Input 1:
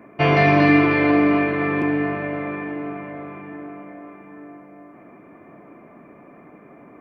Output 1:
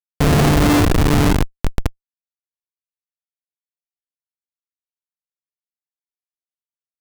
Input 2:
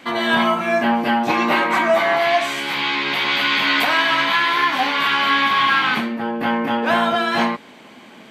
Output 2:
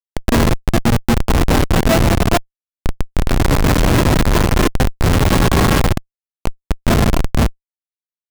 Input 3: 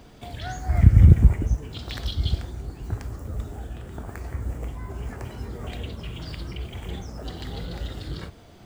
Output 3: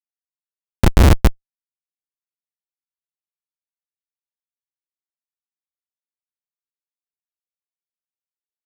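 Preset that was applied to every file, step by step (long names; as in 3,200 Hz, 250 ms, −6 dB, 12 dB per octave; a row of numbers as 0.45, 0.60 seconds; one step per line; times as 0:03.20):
stylus tracing distortion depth 0.28 ms
dynamic equaliser 120 Hz, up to −7 dB, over −46 dBFS, Q 7.5
comparator with hysteresis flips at −11.5 dBFS
loudness normalisation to −16 LKFS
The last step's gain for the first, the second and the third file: +9.5, +7.0, +16.5 decibels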